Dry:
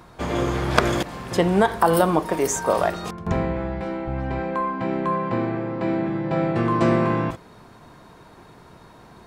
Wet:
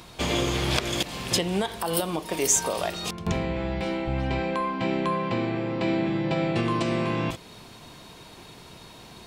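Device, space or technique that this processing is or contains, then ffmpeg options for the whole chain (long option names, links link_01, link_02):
stacked limiters: -af "alimiter=limit=-9.5dB:level=0:latency=1:release=487,alimiter=limit=-16dB:level=0:latency=1:release=409,highshelf=frequency=2100:width_type=q:width=1.5:gain=9"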